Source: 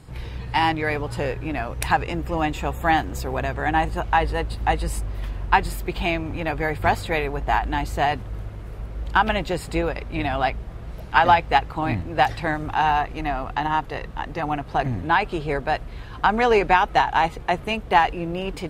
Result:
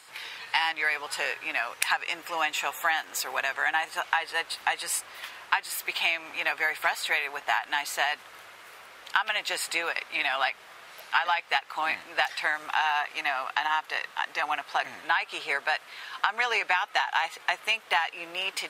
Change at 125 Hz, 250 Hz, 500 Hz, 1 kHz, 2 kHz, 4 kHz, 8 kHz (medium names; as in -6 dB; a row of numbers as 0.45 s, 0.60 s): under -35 dB, -22.5 dB, -12.5 dB, -8.5 dB, -0.5 dB, +2.0 dB, +5.5 dB